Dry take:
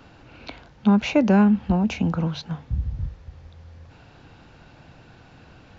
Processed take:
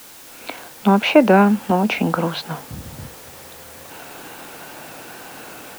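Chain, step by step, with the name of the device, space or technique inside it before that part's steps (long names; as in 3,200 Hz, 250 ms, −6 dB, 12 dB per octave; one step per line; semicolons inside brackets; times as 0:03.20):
dictaphone (band-pass filter 340–3,400 Hz; automatic gain control gain up to 15 dB; tape wow and flutter; white noise bed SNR 21 dB)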